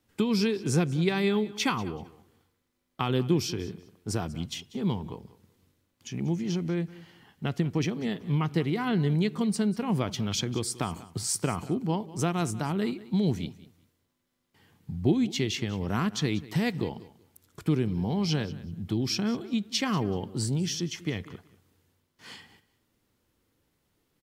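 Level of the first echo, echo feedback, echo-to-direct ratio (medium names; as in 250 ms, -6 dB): -18.5 dB, 20%, -18.5 dB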